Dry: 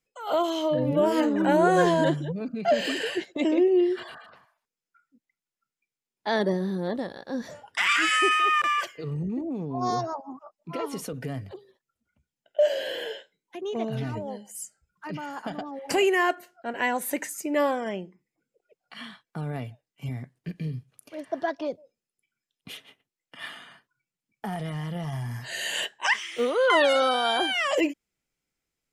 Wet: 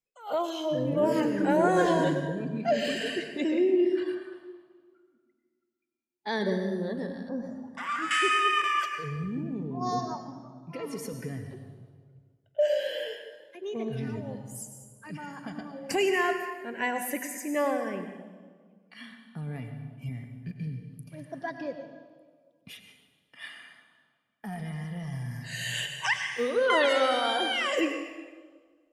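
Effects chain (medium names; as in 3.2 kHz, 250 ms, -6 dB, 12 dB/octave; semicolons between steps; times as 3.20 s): on a send at -5 dB: reverberation RT60 1.8 s, pre-delay 88 ms; on the sum: spectral noise reduction 7 dB; 7.29–8.11 s: resonant high shelf 1.6 kHz -13.5 dB, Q 1.5; trim -3.5 dB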